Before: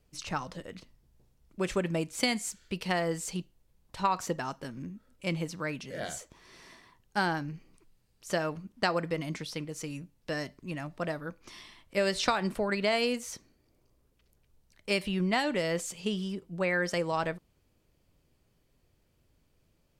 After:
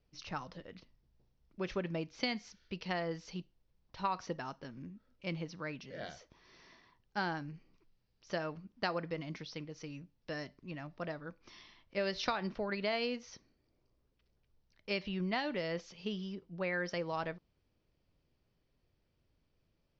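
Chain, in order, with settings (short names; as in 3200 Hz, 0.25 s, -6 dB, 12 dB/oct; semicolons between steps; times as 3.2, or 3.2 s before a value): steep low-pass 5900 Hz 72 dB/oct; gain -7 dB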